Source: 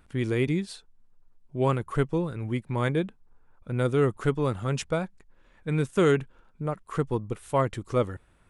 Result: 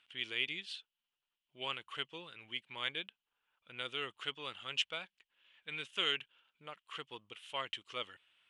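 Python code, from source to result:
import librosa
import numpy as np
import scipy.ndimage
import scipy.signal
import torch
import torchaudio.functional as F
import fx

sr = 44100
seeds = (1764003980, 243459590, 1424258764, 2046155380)

y = fx.bandpass_q(x, sr, hz=3000.0, q=6.4)
y = y * librosa.db_to_amplitude(10.5)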